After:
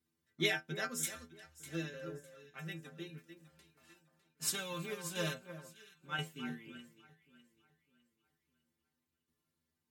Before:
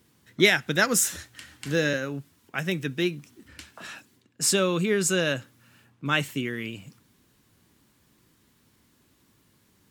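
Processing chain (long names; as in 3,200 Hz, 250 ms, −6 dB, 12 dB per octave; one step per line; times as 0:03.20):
0:03.17–0:05.33: spectral envelope flattened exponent 0.6
stiff-string resonator 78 Hz, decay 0.36 s, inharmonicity 0.008
shaped tremolo saw down 0.97 Hz, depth 50%
delay that swaps between a low-pass and a high-pass 302 ms, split 1,500 Hz, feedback 61%, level −7 dB
expander for the loud parts 1.5 to 1, over −54 dBFS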